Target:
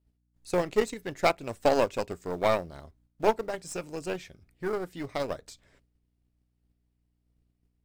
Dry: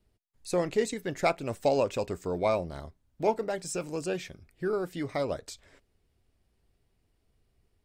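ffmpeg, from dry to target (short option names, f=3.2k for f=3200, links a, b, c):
-filter_complex "[0:a]aeval=exprs='val(0)+0.000891*(sin(2*PI*60*n/s)+sin(2*PI*2*60*n/s)/2+sin(2*PI*3*60*n/s)/3+sin(2*PI*4*60*n/s)/4+sin(2*PI*5*60*n/s)/5)':c=same,agate=range=-7dB:threshold=-60dB:ratio=16:detection=peak,aeval=exprs='0.224*(cos(1*acos(clip(val(0)/0.224,-1,1)))-cos(1*PI/2))+0.0355*(cos(2*acos(clip(val(0)/0.224,-1,1)))-cos(2*PI/2))+0.00562*(cos(6*acos(clip(val(0)/0.224,-1,1)))-cos(6*PI/2))+0.0178*(cos(7*acos(clip(val(0)/0.224,-1,1)))-cos(7*PI/2))':c=same,asplit=2[a][b];[b]acrusher=bits=3:mode=log:mix=0:aa=0.000001,volume=-12dB[c];[a][c]amix=inputs=2:normalize=0"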